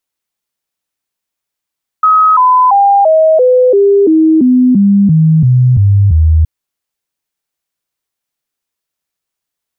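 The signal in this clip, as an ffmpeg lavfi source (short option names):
-f lavfi -i "aevalsrc='0.631*clip(min(mod(t,0.34),0.34-mod(t,0.34))/0.005,0,1)*sin(2*PI*1270*pow(2,-floor(t/0.34)/3)*mod(t,0.34))':d=4.42:s=44100"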